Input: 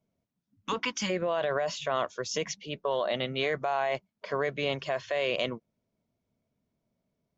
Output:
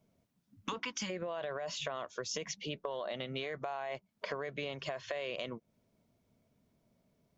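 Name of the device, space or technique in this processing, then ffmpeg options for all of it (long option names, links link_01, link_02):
serial compression, leveller first: -af "acompressor=threshold=-32dB:ratio=2.5,acompressor=threshold=-44dB:ratio=4,volume=6.5dB"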